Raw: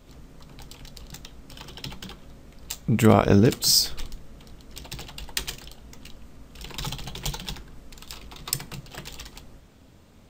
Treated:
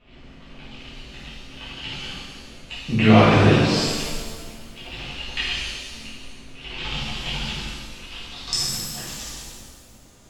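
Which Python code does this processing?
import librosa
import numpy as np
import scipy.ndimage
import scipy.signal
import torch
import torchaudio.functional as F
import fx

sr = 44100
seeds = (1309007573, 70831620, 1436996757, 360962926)

y = fx.filter_sweep_lowpass(x, sr, from_hz=2700.0, to_hz=6900.0, start_s=8.08, end_s=8.63, q=3.7)
y = fx.rev_shimmer(y, sr, seeds[0], rt60_s=1.5, semitones=7, shimmer_db=-8, drr_db=-10.5)
y = y * 10.0 ** (-8.5 / 20.0)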